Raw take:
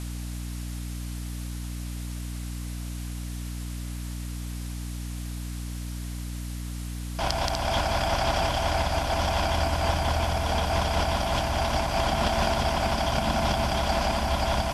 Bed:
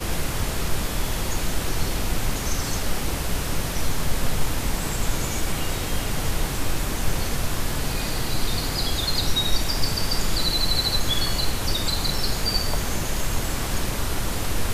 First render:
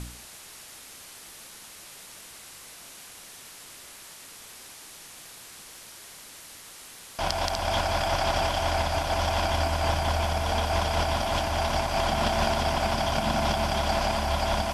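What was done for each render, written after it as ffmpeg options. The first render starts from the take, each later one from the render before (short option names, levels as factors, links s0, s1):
-af "bandreject=f=60:t=h:w=4,bandreject=f=120:t=h:w=4,bandreject=f=180:t=h:w=4,bandreject=f=240:t=h:w=4,bandreject=f=300:t=h:w=4,bandreject=f=360:t=h:w=4,bandreject=f=420:t=h:w=4,bandreject=f=480:t=h:w=4"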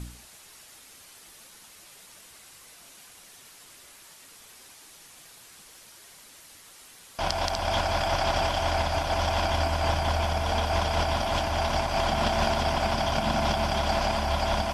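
-af "afftdn=nr=6:nf=-46"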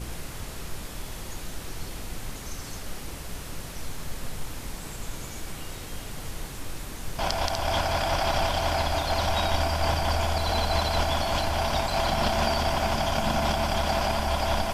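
-filter_complex "[1:a]volume=0.266[s0];[0:a][s0]amix=inputs=2:normalize=0"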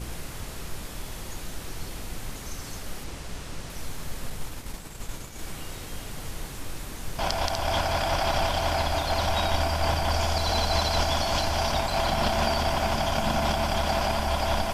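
-filter_complex "[0:a]asettb=1/sr,asplit=3[s0][s1][s2];[s0]atrim=end=3.044[s3];[s1]atrim=start=3.04:end=3.7,asetpts=PTS-STARTPTS,afade=t=in:d=0.004:c=qsin,afade=t=out:st=0.656:d=0.004:c=qsin,acrossover=split=9200[s4][s5];[s5]acompressor=threshold=0.00126:ratio=4:attack=1:release=60[s6];[s4][s6]amix=inputs=2:normalize=0[s7];[s2]atrim=start=3.696[s8];[s3][s7]acrossfade=d=0.004:c1=hsin:c2=qsin[s9];[s9][s8]acrossfade=d=0.004:c1=qsin:c2=hsin,asettb=1/sr,asplit=3[s10][s11][s12];[s10]atrim=end=4.304[s13];[s11]atrim=start=4.3:end=5.39,asetpts=PTS-STARTPTS,afade=t=in:d=0.004:c=qsin,afade=t=out:st=1.086:d=0.004:c=qsin,agate=range=0.0224:threshold=0.0224:ratio=3:release=100:detection=peak[s14];[s12]atrim=start=5.386[s15];[s13][s14]acrossfade=d=0.004:c1=hsin:c2=qsin[s16];[s16][s15]acrossfade=d=0.004:c1=qsin:c2=hsin,asettb=1/sr,asplit=3[s17][s18][s19];[s17]atrim=end=10.144[s20];[s18]atrim=start=10.14:end=11.72,asetpts=PTS-STARTPTS,afade=t=in:d=0.004:c=qsin,afade=t=out:st=1.576:d=0.004:c=qsin,equalizer=f=5500:t=o:w=0.77:g=5.5[s21];[s19]atrim=start=11.716[s22];[s20][s21]acrossfade=d=0.004:c1=hsin:c2=qsin[s23];[s23][s22]acrossfade=d=0.004:c1=qsin:c2=hsin"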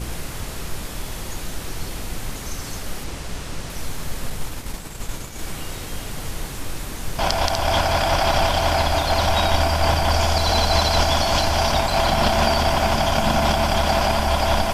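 -af "volume=2.11"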